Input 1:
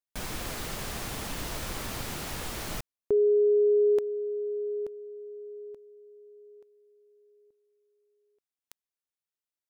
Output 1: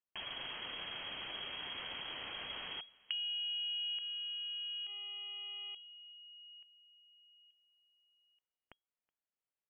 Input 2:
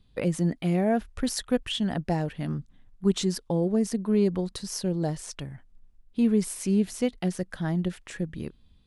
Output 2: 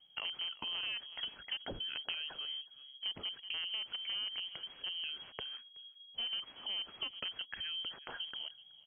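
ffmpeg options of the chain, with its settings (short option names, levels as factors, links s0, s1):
-filter_complex "[0:a]asplit=2[s0][s1];[s1]acrusher=bits=4:dc=4:mix=0:aa=0.000001,volume=0.447[s2];[s0][s2]amix=inputs=2:normalize=0,asplit=2[s3][s4];[s4]adelay=373.2,volume=0.0398,highshelf=f=4000:g=-8.4[s5];[s3][s5]amix=inputs=2:normalize=0,acompressor=threshold=0.01:ratio=3:attack=12:release=90:knee=1:detection=peak,lowpass=f=2800:t=q:w=0.5098,lowpass=f=2800:t=q:w=0.6013,lowpass=f=2800:t=q:w=0.9,lowpass=f=2800:t=q:w=2.563,afreqshift=-3300,tiltshelf=f=750:g=4.5"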